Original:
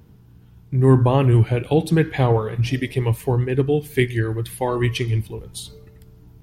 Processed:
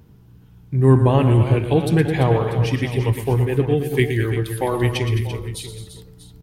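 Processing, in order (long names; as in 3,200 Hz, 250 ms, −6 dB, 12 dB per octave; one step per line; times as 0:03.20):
multi-tap delay 116/212/340/640 ms −10/−11.5/−11/−15.5 dB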